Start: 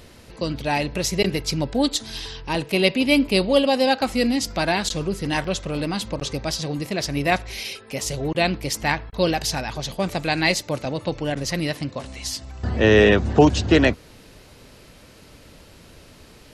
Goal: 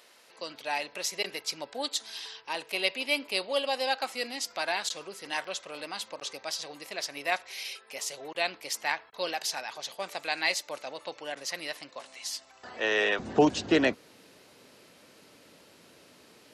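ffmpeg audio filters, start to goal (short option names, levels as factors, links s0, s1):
-af "asetnsamples=n=441:p=0,asendcmd='13.19 highpass f 230',highpass=680,volume=0.473"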